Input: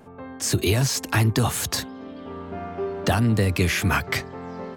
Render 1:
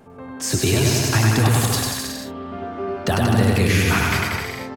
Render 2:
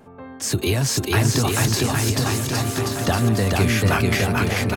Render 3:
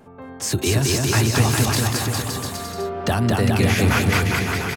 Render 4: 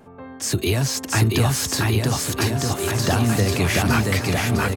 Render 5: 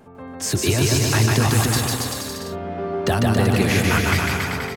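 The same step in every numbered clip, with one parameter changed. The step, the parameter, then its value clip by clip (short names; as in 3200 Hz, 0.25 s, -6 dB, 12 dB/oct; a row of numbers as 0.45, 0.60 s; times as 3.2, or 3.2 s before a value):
bouncing-ball echo, first gap: 0.1, 0.44, 0.22, 0.68, 0.15 s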